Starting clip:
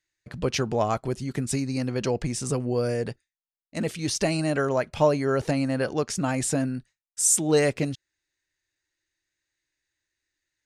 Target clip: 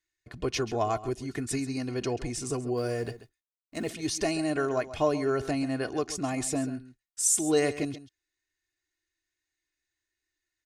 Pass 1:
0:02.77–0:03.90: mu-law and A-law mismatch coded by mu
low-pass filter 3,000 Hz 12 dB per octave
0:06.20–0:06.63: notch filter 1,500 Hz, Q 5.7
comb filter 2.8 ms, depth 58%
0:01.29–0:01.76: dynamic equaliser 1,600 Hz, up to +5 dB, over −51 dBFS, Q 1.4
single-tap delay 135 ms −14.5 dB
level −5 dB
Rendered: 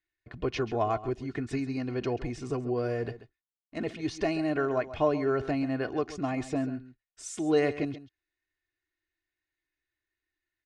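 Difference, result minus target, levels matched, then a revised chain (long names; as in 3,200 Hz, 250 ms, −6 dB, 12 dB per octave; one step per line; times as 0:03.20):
4,000 Hz band −5.0 dB
0:02.77–0:03.90: mu-law and A-law mismatch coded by mu
0:06.20–0:06.63: notch filter 1,500 Hz, Q 5.7
comb filter 2.8 ms, depth 58%
0:01.29–0:01.76: dynamic equaliser 1,600 Hz, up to +5 dB, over −51 dBFS, Q 1.4
single-tap delay 135 ms −14.5 dB
level −5 dB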